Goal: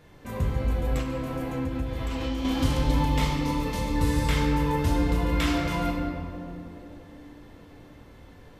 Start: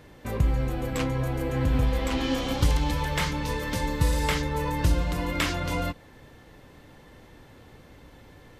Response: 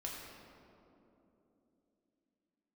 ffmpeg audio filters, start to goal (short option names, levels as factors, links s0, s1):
-filter_complex "[1:a]atrim=start_sample=2205[s0];[0:a][s0]afir=irnorm=-1:irlink=0,asettb=1/sr,asplit=3[s1][s2][s3];[s1]atrim=end=0.984[s4];[s2]atrim=start=0.98:end=2.45,asetpts=PTS-STARTPTS,afade=t=in:d=0.004:c=qsin,afade=t=out:st=1.466:d=0.004:c=qsin,acompressor=threshold=0.0501:ratio=6[s5];[s3]atrim=start=2.446[s6];[s4][s5]acrossfade=d=0.004:c1=hsin:c2=qsin[s7];[s7][s6]acrossfade=d=0.004:c1=qsin:c2=hsin,asettb=1/sr,asplit=3[s8][s9][s10];[s8]atrim=end=3.054[s11];[s9]atrim=start=3.05:end=3.96,asetpts=PTS-STARTPTS,afade=t=in:d=0.004:c=qsin,afade=t=out:st=0.906:d=0.004:c=qsin,equalizer=f=1600:w=6.4:g=-12.5[s12];[s10]atrim=start=3.956[s13];[s11][s12]acrossfade=d=0.004:c1=hsin:c2=qsin[s14];[s14][s13]acrossfade=d=0.004:c1=qsin:c2=hsin"